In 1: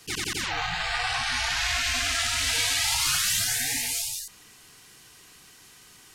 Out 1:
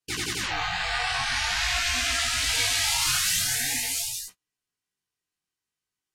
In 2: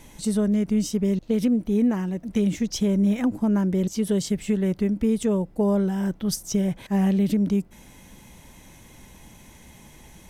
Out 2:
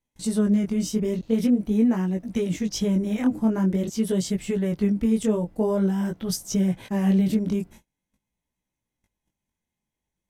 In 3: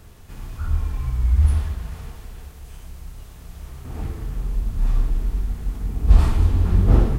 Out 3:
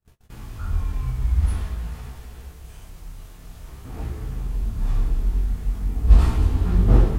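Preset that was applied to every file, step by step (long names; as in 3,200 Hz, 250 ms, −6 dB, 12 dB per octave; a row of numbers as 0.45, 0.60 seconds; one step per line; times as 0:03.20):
noise gate −41 dBFS, range −37 dB
chorus effect 0.46 Hz, delay 16 ms, depth 7.2 ms
loudness normalisation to −24 LKFS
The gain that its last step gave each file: +3.5, +3.0, +2.0 decibels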